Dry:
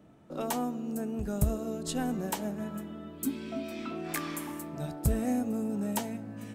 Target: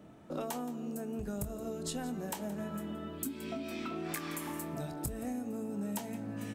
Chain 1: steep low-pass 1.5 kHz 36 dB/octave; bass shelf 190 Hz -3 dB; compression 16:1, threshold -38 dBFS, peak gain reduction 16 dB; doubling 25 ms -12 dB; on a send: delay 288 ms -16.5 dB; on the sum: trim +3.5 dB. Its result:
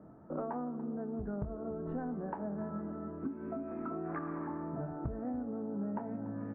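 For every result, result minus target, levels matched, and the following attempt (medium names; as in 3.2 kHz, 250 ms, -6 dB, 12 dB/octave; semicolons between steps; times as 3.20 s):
echo 116 ms late; 2 kHz band -6.0 dB
steep low-pass 1.5 kHz 36 dB/octave; bass shelf 190 Hz -3 dB; compression 16:1, threshold -38 dBFS, peak gain reduction 16 dB; doubling 25 ms -12 dB; on a send: delay 172 ms -16.5 dB; on the sum: trim +3.5 dB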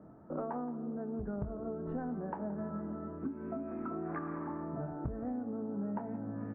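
2 kHz band -6.0 dB
bass shelf 190 Hz -3 dB; compression 16:1, threshold -38 dBFS, peak gain reduction 16 dB; doubling 25 ms -12 dB; on a send: delay 172 ms -16.5 dB; on the sum: trim +3.5 dB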